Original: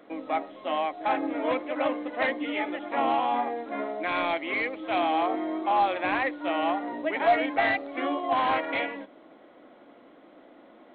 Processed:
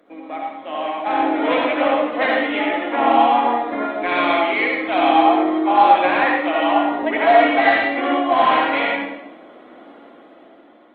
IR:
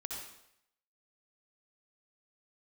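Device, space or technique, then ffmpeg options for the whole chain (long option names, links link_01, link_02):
far-field microphone of a smart speaker: -filter_complex "[0:a]highpass=63,asettb=1/sr,asplit=3[link_01][link_02][link_03];[link_01]atrim=end=1.344[link_04];[link_02]atrim=start=1.34:end=1.8,asetpts=PTS-STARTPTS,afade=type=in:duration=0.004:curve=qsin,afade=type=out:start_time=0.456:duration=0.004:curve=qsin,equalizer=frequency=3400:width=0.55:gain=5[link_05];[link_03]atrim=start=1.796[link_06];[link_04][link_05]acrossfade=duration=0.004:curve1=hsin:curve2=qsin[link_07];[link_07][link_06]acrossfade=duration=0.004:curve1=qsin:curve2=hsin[link_08];[1:a]atrim=start_sample=2205[link_09];[link_08][link_09]afir=irnorm=-1:irlink=0,highpass=frequency=140:width=0.5412,highpass=frequency=140:width=1.3066,dynaudnorm=framelen=320:gausssize=7:maxgain=10dB,volume=1.5dB" -ar 48000 -c:a libopus -b:a 24k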